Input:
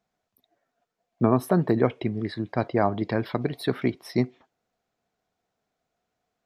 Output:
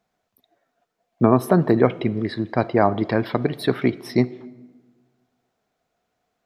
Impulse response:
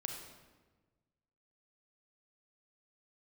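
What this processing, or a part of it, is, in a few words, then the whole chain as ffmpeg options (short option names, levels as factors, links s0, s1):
filtered reverb send: -filter_complex "[0:a]asplit=2[s0][s1];[s1]highpass=160,lowpass=4700[s2];[1:a]atrim=start_sample=2205[s3];[s2][s3]afir=irnorm=-1:irlink=0,volume=0.251[s4];[s0][s4]amix=inputs=2:normalize=0,volume=1.58"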